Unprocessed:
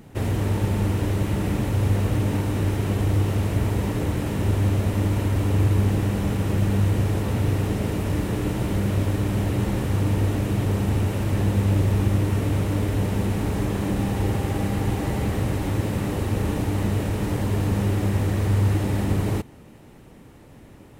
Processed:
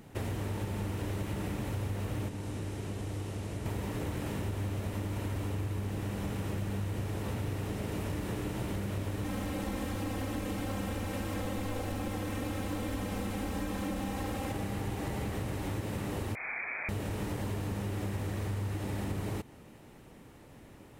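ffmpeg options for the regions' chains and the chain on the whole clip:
-filter_complex "[0:a]asettb=1/sr,asplit=3[a][b][c];[a]atrim=end=2.284[d];[b]atrim=start=2.28:end=3.66,asetpts=PTS-STARTPTS,afade=t=in:d=0.004:c=qsin,afade=t=out:st=1.376:d=0.004:c=qsin,lowpass=8.9k,aemphasis=mode=production:type=cd,acrossover=split=220|670[e][f][g];[e]acompressor=threshold=-30dB:ratio=4[h];[f]acompressor=threshold=-37dB:ratio=4[i];[g]acompressor=threshold=-46dB:ratio=4[j];[h][i][j]amix=inputs=3:normalize=0[k];[c]atrim=start=3.656[l];[d][k]acrossfade=d=0.004:c1=hsin:c2=qsin[m];[m][l]acrossfade=d=0.004:c1=qsin:c2=hsin,asettb=1/sr,asplit=3[n][o][p];[n]atrim=end=9.244[q];[o]atrim=start=9.24:end=14.52,asetpts=PTS-STARTPTS,afade=t=in:d=0.004:c=qsin,afade=t=out:st=5.276:d=0.004:c=qsin,aeval=exprs='0.119*(abs(mod(val(0)/0.119+3,4)-2)-1)':c=same,aecho=1:1:3.8:0.8,atrim=end_sample=232848[r];[p]atrim=start=14.516[s];[q][r]acrossfade=d=0.004:c1=hsin:c2=qsin[t];[t][s]acrossfade=d=0.004:c1=qsin:c2=hsin,asettb=1/sr,asplit=3[u][v][w];[u]atrim=end=16.354[x];[v]atrim=start=16.35:end=16.89,asetpts=PTS-STARTPTS,afade=t=in:d=0.004:c=qsin,afade=t=out:st=0.536:d=0.004:c=qsin,highpass=f=190:p=1,aemphasis=mode=production:type=riaa,lowpass=f=2.2k:t=q:w=0.5098,lowpass=f=2.2k:t=q:w=0.6013,lowpass=f=2.2k:t=q:w=0.9,lowpass=f=2.2k:t=q:w=2.563,afreqshift=-2600[y];[w]atrim=start=16.886[z];[x][y]acrossfade=d=0.004:c1=hsin:c2=qsin[aa];[aa][z]acrossfade=d=0.004:c1=qsin:c2=hsin,lowshelf=f=390:g=-4,acompressor=threshold=-28dB:ratio=6,volume=-3.5dB"

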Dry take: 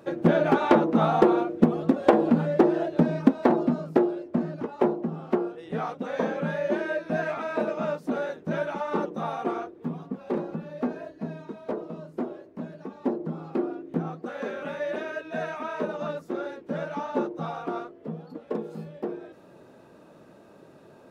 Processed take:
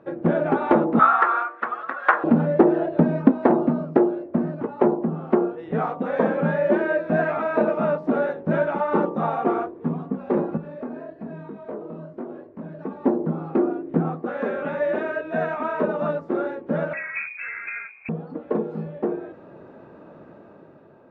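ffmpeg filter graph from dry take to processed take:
-filter_complex "[0:a]asettb=1/sr,asplit=3[a][b][c];[a]atrim=end=0.994[d];[b]atrim=start=0.99:end=2.24,asetpts=PTS-STARTPTS,afade=t=in:d=0.004:c=qsin,afade=t=out:st=1.246:d=0.004:c=qsin,highpass=f=1.3k:t=q:w=3.8,equalizer=f=1.8k:w=2.2:g=5.5[e];[c]atrim=start=2.236[f];[d][e]acrossfade=d=0.004:c1=hsin:c2=qsin[g];[g][f]acrossfade=d=0.004:c1=qsin:c2=hsin,asettb=1/sr,asplit=3[h][i][j];[h]atrim=end=10.574[k];[i]atrim=start=10.57:end=12.79,asetpts=PTS-STARTPTS,afade=t=in:d=0.004:c=qsin,afade=t=out:st=2.216:d=0.004:c=qsin,flanger=delay=19:depth=6.5:speed=1.1,acompressor=threshold=-40dB:ratio=2:attack=3.2:release=140:knee=1:detection=peak[l];[j]atrim=start=12.786[m];[k][l]acrossfade=d=0.004:c1=hsin:c2=qsin[n];[n][m]acrossfade=d=0.004:c1=qsin:c2=hsin,asettb=1/sr,asplit=3[o][p][q];[o]atrim=end=16.934[r];[p]atrim=start=16.93:end=18.09,asetpts=PTS-STARTPTS,afade=t=in:d=0.004:c=qsin,afade=t=out:st=1.156:d=0.004:c=qsin,highpass=53,lowpass=f=2.4k:t=q:w=0.5098,lowpass=f=2.4k:t=q:w=0.6013,lowpass=f=2.4k:t=q:w=0.9,lowpass=f=2.4k:t=q:w=2.563,afreqshift=-2800,acompressor=threshold=-36dB:ratio=1.5:attack=3.2:release=140:knee=1:detection=peak[s];[q]atrim=start=18.086[t];[r][s]acrossfade=d=0.004:c1=hsin:c2=qsin[u];[u][t]acrossfade=d=0.004:c1=qsin:c2=hsin,lowpass=1.8k,bandreject=f=61.7:t=h:w=4,bandreject=f=123.4:t=h:w=4,bandreject=f=185.1:t=h:w=4,bandreject=f=246.8:t=h:w=4,bandreject=f=308.5:t=h:w=4,bandreject=f=370.2:t=h:w=4,bandreject=f=431.9:t=h:w=4,bandreject=f=493.6:t=h:w=4,bandreject=f=555.3:t=h:w=4,bandreject=f=617:t=h:w=4,bandreject=f=678.7:t=h:w=4,bandreject=f=740.4:t=h:w=4,bandreject=f=802.1:t=h:w=4,bandreject=f=863.8:t=h:w=4,bandreject=f=925.5:t=h:w=4,bandreject=f=987.2:t=h:w=4,bandreject=f=1.0489k:t=h:w=4,bandreject=f=1.1106k:t=h:w=4,bandreject=f=1.1723k:t=h:w=4,dynaudnorm=f=180:g=9:m=7.5dB"

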